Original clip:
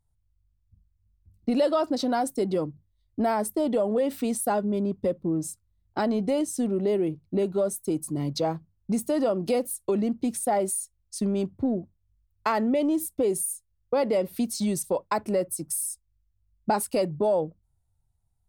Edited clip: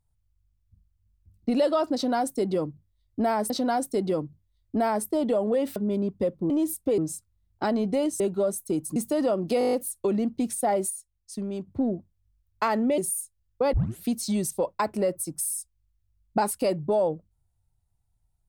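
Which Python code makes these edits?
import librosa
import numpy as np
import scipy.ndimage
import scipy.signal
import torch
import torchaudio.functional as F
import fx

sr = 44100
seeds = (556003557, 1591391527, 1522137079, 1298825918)

y = fx.edit(x, sr, fx.repeat(start_s=1.94, length_s=1.56, count=2),
    fx.cut(start_s=4.2, length_s=0.39),
    fx.cut(start_s=6.55, length_s=0.83),
    fx.cut(start_s=8.14, length_s=0.8),
    fx.stutter(start_s=9.57, slice_s=0.02, count=8),
    fx.clip_gain(start_s=10.74, length_s=0.77, db=-6.0),
    fx.move(start_s=12.82, length_s=0.48, to_s=5.33),
    fx.tape_start(start_s=14.05, length_s=0.29), tone=tone)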